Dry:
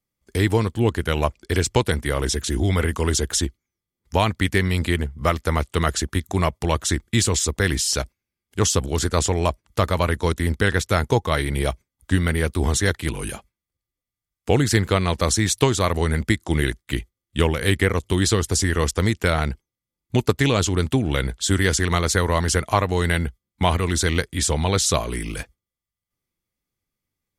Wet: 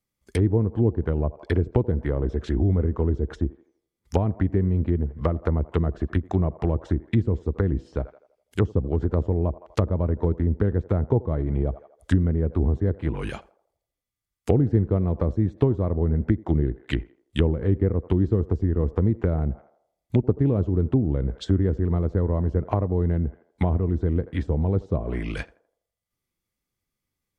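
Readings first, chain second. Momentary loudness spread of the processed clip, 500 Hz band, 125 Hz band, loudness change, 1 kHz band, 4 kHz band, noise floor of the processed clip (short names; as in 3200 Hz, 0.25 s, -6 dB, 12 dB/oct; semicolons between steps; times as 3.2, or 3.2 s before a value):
7 LU, -3.5 dB, 0.0 dB, -3.0 dB, -11.5 dB, -19.5 dB, -84 dBFS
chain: narrowing echo 82 ms, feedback 48%, band-pass 610 Hz, level -18 dB; treble ducked by the level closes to 420 Hz, closed at -17.5 dBFS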